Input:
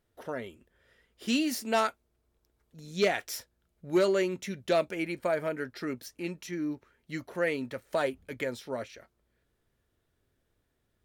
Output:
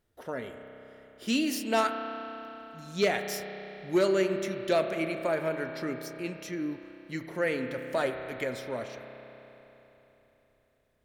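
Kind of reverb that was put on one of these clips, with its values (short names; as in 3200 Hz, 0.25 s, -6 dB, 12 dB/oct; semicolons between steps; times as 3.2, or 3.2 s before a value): spring tank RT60 3.7 s, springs 31 ms, chirp 20 ms, DRR 6 dB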